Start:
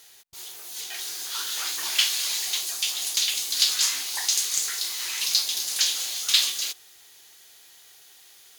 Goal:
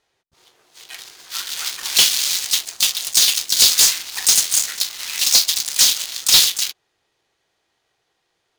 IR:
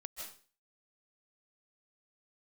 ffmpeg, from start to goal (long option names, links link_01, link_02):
-filter_complex "[0:a]adynamicsmooth=sensitivity=4.5:basefreq=650,crystalizer=i=9:c=0,asplit=2[link_01][link_02];[link_02]asetrate=58866,aresample=44100,atempo=0.749154,volume=-6dB[link_03];[link_01][link_03]amix=inputs=2:normalize=0,asoftclip=type=hard:threshold=-1.5dB,volume=-4dB"